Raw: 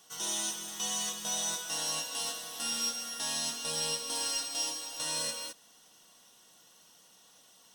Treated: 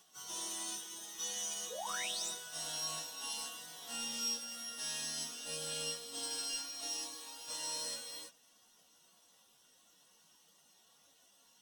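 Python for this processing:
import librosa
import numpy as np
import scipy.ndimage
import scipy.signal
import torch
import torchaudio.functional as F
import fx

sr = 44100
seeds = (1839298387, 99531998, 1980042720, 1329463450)

y = fx.spec_paint(x, sr, seeds[0], shape='rise', start_s=1.14, length_s=0.4, low_hz=440.0, high_hz=8600.0, level_db=-36.0)
y = fx.stretch_vocoder_free(y, sr, factor=1.5)
y = y * 10.0 ** (-4.0 / 20.0)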